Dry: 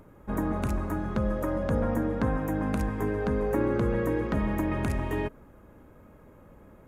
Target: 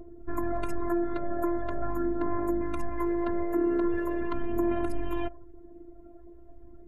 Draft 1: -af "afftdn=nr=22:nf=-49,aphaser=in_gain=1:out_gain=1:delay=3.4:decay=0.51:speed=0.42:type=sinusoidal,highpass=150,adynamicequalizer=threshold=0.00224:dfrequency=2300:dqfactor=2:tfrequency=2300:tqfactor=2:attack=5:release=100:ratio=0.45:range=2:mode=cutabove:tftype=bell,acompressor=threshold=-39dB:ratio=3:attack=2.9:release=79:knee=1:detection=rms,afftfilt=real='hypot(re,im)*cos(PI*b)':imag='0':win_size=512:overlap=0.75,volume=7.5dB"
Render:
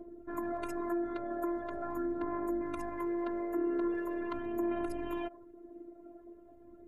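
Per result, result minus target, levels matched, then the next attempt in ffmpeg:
125 Hz band -8.0 dB; compressor: peak gain reduction +6 dB
-af "afftdn=nr=22:nf=-49,aphaser=in_gain=1:out_gain=1:delay=3.4:decay=0.51:speed=0.42:type=sinusoidal,adynamicequalizer=threshold=0.00224:dfrequency=2300:dqfactor=2:tfrequency=2300:tqfactor=2:attack=5:release=100:ratio=0.45:range=2:mode=cutabove:tftype=bell,acompressor=threshold=-39dB:ratio=3:attack=2.9:release=79:knee=1:detection=rms,afftfilt=real='hypot(re,im)*cos(PI*b)':imag='0':win_size=512:overlap=0.75,volume=7.5dB"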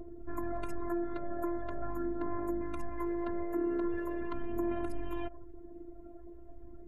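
compressor: peak gain reduction +6.5 dB
-af "afftdn=nr=22:nf=-49,aphaser=in_gain=1:out_gain=1:delay=3.4:decay=0.51:speed=0.42:type=sinusoidal,adynamicequalizer=threshold=0.00224:dfrequency=2300:dqfactor=2:tfrequency=2300:tqfactor=2:attack=5:release=100:ratio=0.45:range=2:mode=cutabove:tftype=bell,acompressor=threshold=-29.5dB:ratio=3:attack=2.9:release=79:knee=1:detection=rms,afftfilt=real='hypot(re,im)*cos(PI*b)':imag='0':win_size=512:overlap=0.75,volume=7.5dB"

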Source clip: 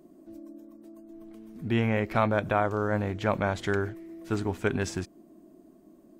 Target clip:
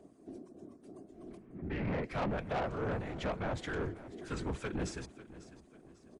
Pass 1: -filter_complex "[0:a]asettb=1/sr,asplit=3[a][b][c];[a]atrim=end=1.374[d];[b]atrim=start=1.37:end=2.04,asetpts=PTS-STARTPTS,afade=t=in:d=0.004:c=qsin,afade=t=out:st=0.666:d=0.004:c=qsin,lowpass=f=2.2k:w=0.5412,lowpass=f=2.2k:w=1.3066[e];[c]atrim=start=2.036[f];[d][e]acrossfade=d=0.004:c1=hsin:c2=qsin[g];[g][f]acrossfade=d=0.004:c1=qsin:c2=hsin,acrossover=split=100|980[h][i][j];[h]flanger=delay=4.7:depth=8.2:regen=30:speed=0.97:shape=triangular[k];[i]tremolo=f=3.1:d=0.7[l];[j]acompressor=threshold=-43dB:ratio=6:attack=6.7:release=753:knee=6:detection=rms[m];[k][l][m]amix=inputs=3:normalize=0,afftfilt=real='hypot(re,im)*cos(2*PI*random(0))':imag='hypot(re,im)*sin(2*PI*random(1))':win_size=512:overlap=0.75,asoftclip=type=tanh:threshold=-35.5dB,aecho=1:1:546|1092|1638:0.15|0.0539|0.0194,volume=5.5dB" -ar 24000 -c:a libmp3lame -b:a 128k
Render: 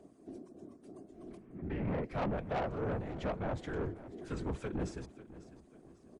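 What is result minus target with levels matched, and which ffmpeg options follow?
compressor: peak gain reduction +8 dB
-filter_complex "[0:a]asettb=1/sr,asplit=3[a][b][c];[a]atrim=end=1.374[d];[b]atrim=start=1.37:end=2.04,asetpts=PTS-STARTPTS,afade=t=in:d=0.004:c=qsin,afade=t=out:st=0.666:d=0.004:c=qsin,lowpass=f=2.2k:w=0.5412,lowpass=f=2.2k:w=1.3066[e];[c]atrim=start=2.036[f];[d][e]acrossfade=d=0.004:c1=hsin:c2=qsin[g];[g][f]acrossfade=d=0.004:c1=qsin:c2=hsin,acrossover=split=100|980[h][i][j];[h]flanger=delay=4.7:depth=8.2:regen=30:speed=0.97:shape=triangular[k];[i]tremolo=f=3.1:d=0.7[l];[j]acompressor=threshold=-33.5dB:ratio=6:attack=6.7:release=753:knee=6:detection=rms[m];[k][l][m]amix=inputs=3:normalize=0,afftfilt=real='hypot(re,im)*cos(2*PI*random(0))':imag='hypot(re,im)*sin(2*PI*random(1))':win_size=512:overlap=0.75,asoftclip=type=tanh:threshold=-35.5dB,aecho=1:1:546|1092|1638:0.15|0.0539|0.0194,volume=5.5dB" -ar 24000 -c:a libmp3lame -b:a 128k

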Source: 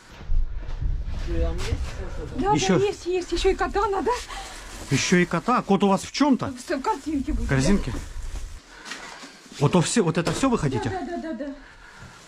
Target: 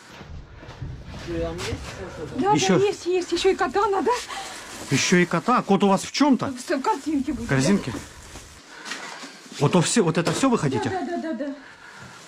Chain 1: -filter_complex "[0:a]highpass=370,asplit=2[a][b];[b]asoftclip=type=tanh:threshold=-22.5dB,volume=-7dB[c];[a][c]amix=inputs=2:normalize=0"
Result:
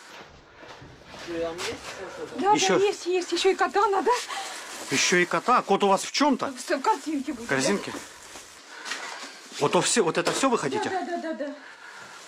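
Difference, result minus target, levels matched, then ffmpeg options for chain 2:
125 Hz band -10.5 dB
-filter_complex "[0:a]highpass=130,asplit=2[a][b];[b]asoftclip=type=tanh:threshold=-22.5dB,volume=-7dB[c];[a][c]amix=inputs=2:normalize=0"

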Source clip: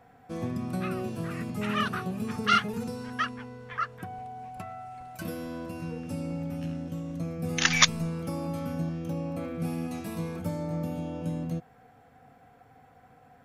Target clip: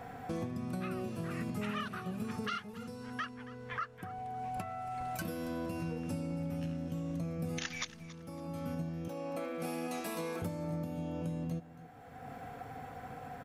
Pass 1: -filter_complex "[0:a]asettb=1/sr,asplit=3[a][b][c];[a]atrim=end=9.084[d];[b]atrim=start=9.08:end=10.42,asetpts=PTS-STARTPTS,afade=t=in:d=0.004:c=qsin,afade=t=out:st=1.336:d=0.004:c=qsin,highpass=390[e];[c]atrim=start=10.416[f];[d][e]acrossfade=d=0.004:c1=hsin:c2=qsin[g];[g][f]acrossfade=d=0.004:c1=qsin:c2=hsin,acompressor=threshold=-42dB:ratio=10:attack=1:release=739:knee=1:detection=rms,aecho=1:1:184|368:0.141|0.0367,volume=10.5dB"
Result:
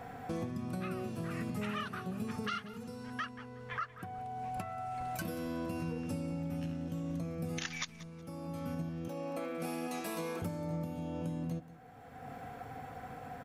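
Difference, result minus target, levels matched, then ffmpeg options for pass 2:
echo 94 ms early
-filter_complex "[0:a]asettb=1/sr,asplit=3[a][b][c];[a]atrim=end=9.084[d];[b]atrim=start=9.08:end=10.42,asetpts=PTS-STARTPTS,afade=t=in:d=0.004:c=qsin,afade=t=out:st=1.336:d=0.004:c=qsin,highpass=390[e];[c]atrim=start=10.416[f];[d][e]acrossfade=d=0.004:c1=hsin:c2=qsin[g];[g][f]acrossfade=d=0.004:c1=qsin:c2=hsin,acompressor=threshold=-42dB:ratio=10:attack=1:release=739:knee=1:detection=rms,aecho=1:1:278|556:0.141|0.0367,volume=10.5dB"

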